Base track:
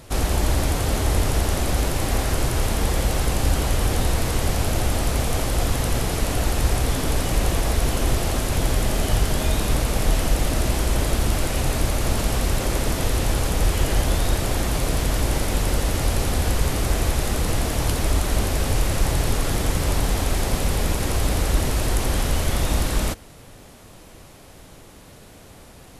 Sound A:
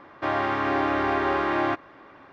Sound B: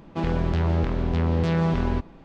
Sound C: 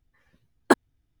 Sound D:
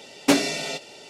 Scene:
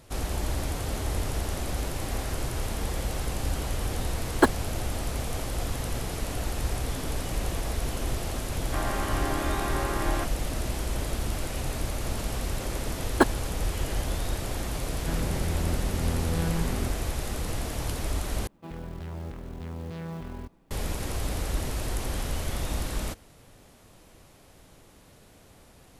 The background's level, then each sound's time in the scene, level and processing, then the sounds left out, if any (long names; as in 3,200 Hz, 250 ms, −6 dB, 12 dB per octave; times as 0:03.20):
base track −9 dB
0:03.72: mix in C −1 dB
0:08.50: mix in A −7.5 dB
0:12.50: mix in C −2 dB
0:14.90: mix in B −7.5 dB + lower of the sound and its delayed copy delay 0.42 ms
0:18.47: overwrite with B −14.5 dB + log-companded quantiser 6 bits
not used: D